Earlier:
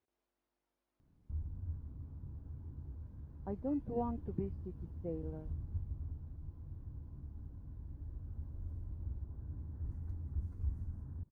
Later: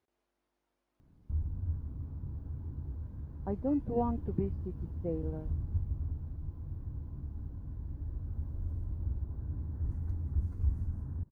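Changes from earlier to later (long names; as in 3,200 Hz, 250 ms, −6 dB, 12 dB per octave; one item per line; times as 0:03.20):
speech +5.5 dB
background +7.0 dB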